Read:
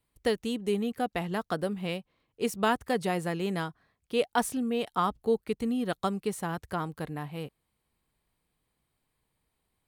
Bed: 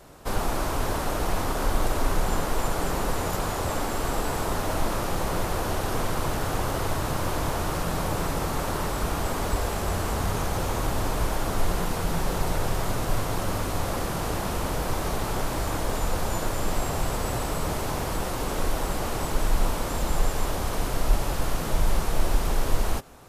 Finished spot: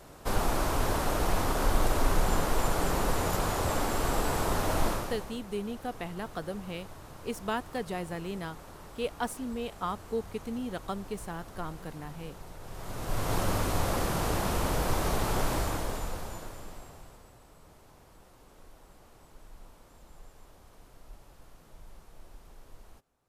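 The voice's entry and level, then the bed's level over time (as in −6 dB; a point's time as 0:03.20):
4.85 s, −6.0 dB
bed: 0:04.88 −1.5 dB
0:05.38 −20 dB
0:12.59 −20 dB
0:13.33 −1 dB
0:15.54 −1 dB
0:17.35 −28 dB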